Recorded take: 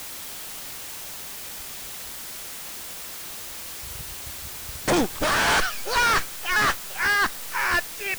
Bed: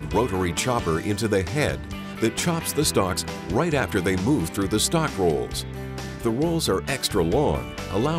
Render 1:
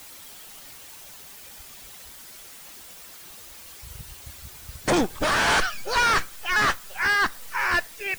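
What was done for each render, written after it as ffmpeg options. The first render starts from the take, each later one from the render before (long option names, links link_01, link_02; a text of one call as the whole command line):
ffmpeg -i in.wav -af "afftdn=noise_reduction=9:noise_floor=-37" out.wav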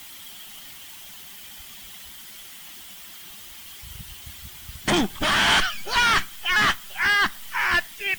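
ffmpeg -i in.wav -af "equalizer=frequency=200:width_type=o:width=0.33:gain=6,equalizer=frequency=500:width_type=o:width=0.33:gain=-12,equalizer=frequency=2000:width_type=o:width=0.33:gain=4,equalizer=frequency=3150:width_type=o:width=0.33:gain=10,equalizer=frequency=16000:width_type=o:width=0.33:gain=5" out.wav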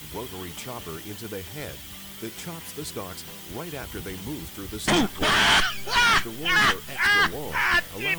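ffmpeg -i in.wav -i bed.wav -filter_complex "[1:a]volume=-13.5dB[link_01];[0:a][link_01]amix=inputs=2:normalize=0" out.wav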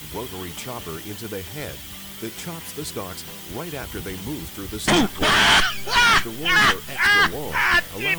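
ffmpeg -i in.wav -af "volume=3.5dB" out.wav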